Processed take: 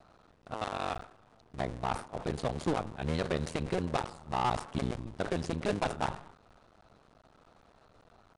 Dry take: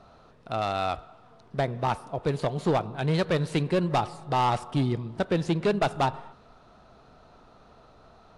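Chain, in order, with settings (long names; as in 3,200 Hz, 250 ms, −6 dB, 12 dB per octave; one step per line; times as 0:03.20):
sub-harmonics by changed cycles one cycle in 2, muted
downsampling to 22,050 Hz
level that may fall only so fast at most 140 dB per second
level −4.5 dB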